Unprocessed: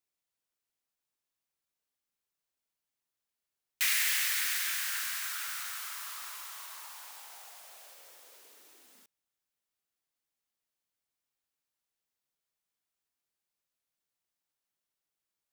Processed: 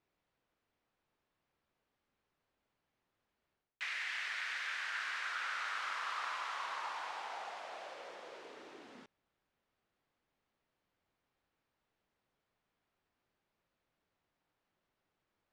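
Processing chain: reverse; compression 16:1, threshold -40 dBFS, peak gain reduction 16.5 dB; reverse; tape spacing loss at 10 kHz 36 dB; trim +15.5 dB

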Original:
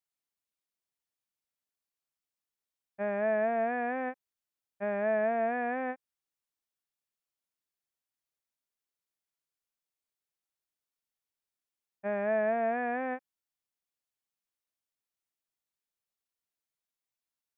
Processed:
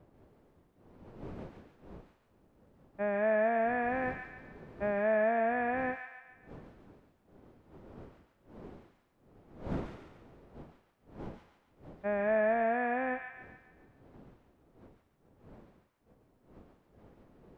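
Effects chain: wind noise 400 Hz -51 dBFS; feedback echo behind a high-pass 141 ms, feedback 49%, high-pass 1.5 kHz, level -3 dB

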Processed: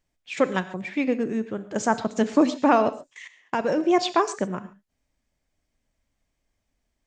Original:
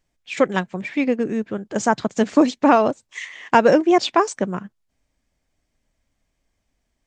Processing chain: 2.89–3.78 s: level held to a coarse grid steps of 19 dB; gated-style reverb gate 160 ms flat, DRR 12 dB; trim -4 dB

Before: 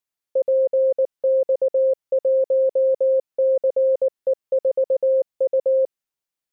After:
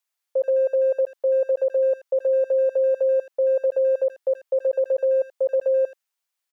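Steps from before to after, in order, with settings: high-pass 730 Hz 12 dB/octave; speakerphone echo 80 ms, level -16 dB; trim +5 dB

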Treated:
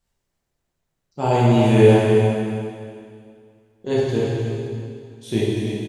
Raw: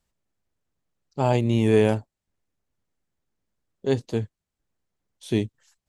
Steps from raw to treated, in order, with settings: on a send: delay 311 ms -9.5 dB; on the sum: plate-style reverb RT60 2.3 s, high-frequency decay 0.95×, DRR -8 dB; trim -2.5 dB

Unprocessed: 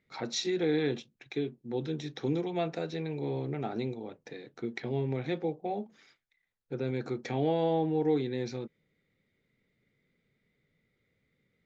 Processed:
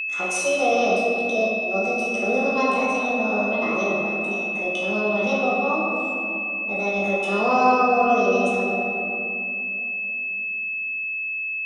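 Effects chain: pitch shift +7.5 st; simulated room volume 120 m³, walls hard, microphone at 0.81 m; whistle 2.6 kHz -27 dBFS; trim +2 dB

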